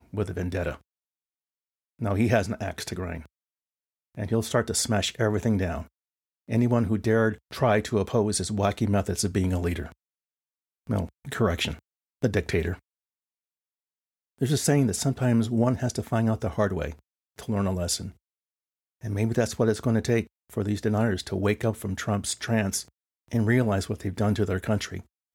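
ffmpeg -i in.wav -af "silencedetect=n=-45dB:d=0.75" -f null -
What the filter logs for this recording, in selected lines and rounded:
silence_start: 0.77
silence_end: 1.99 | silence_duration: 1.22
silence_start: 3.26
silence_end: 4.15 | silence_duration: 0.89
silence_start: 9.92
silence_end: 10.87 | silence_duration: 0.95
silence_start: 12.79
silence_end: 14.38 | silence_duration: 1.59
silence_start: 18.12
silence_end: 19.03 | silence_duration: 0.92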